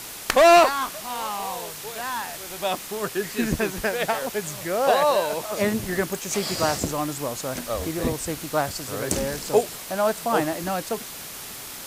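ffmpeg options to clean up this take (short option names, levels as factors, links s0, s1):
-af "afwtdn=0.016"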